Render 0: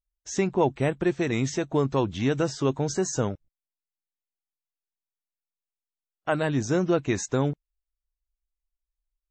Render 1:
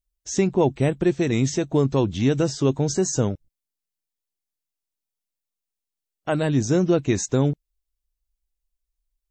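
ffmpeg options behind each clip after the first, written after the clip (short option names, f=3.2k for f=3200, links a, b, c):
-af "equalizer=f=1.3k:w=0.56:g=-8,volume=6dB"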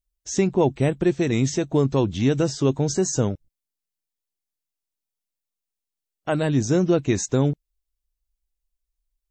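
-af anull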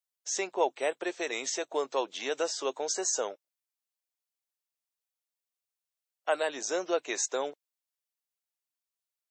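-af "highpass=f=520:w=0.5412,highpass=f=520:w=1.3066,volume=-2dB"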